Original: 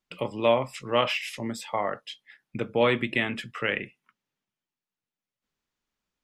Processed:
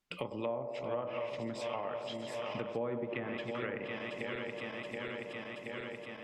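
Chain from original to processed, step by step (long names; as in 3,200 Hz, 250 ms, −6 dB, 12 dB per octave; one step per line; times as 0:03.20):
feedback delay that plays each chunk backwards 363 ms, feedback 80%, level −10 dB
treble cut that deepens with the level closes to 990 Hz, closed at −20.5 dBFS
on a send: feedback echo with a band-pass in the loop 98 ms, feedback 70%, band-pass 520 Hz, level −9 dB
on the sum: downward compressor 3 to 1, threshold −38 dBFS, peak gain reduction 15.5 dB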